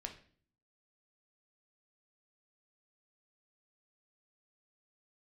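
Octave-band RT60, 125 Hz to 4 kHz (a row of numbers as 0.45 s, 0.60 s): 0.80 s, 0.75 s, 0.55 s, 0.40 s, 0.45 s, 0.45 s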